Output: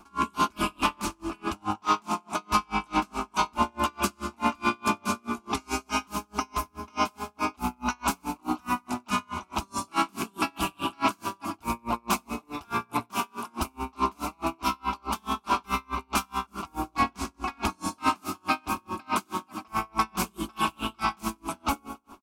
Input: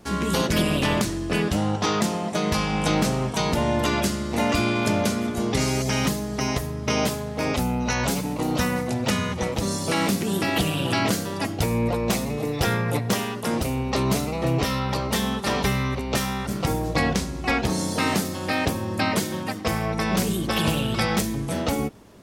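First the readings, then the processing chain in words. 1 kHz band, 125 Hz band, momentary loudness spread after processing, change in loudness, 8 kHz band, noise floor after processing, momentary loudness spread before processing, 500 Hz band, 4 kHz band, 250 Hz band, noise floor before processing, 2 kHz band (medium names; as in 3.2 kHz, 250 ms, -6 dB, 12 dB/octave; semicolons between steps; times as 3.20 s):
+1.0 dB, -16.5 dB, 7 LU, -5.5 dB, -7.5 dB, -63 dBFS, 4 LU, -12.0 dB, -8.0 dB, -9.0 dB, -31 dBFS, -6.0 dB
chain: high-order bell 1.6 kHz +13.5 dB; static phaser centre 500 Hz, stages 6; overload inside the chain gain 14 dB; feedback delay 94 ms, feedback 54%, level -12 dB; logarithmic tremolo 4.7 Hz, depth 37 dB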